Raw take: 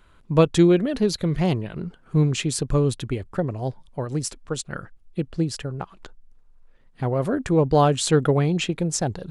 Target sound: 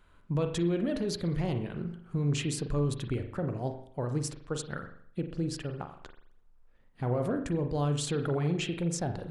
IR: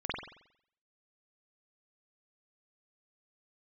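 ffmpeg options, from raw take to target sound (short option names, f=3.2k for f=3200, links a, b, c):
-filter_complex "[0:a]asettb=1/sr,asplit=3[a][b][c];[a]atrim=end=7.364[d];[b]atrim=start=7.36:end=8.02,asetpts=PTS-STARTPTS,afade=t=in:d=0.004:c=qsin,afade=t=out:st=0.656:d=0.004:c=qsin,equalizer=f=870:w=0.43:g=-7[e];[c]atrim=start=8.016[f];[d][e]acrossfade=d=0.004:c1=hsin:c2=qsin[g];[g][f]acrossfade=d=0.004:c1=qsin:c2=hsin,alimiter=limit=-17dB:level=0:latency=1:release=38,asplit=2[h][i];[1:a]atrim=start_sample=2205,asetrate=48510,aresample=44100,lowpass=3.2k[j];[i][j]afir=irnorm=-1:irlink=0,volume=-9dB[k];[h][k]amix=inputs=2:normalize=0,volume=-7.5dB"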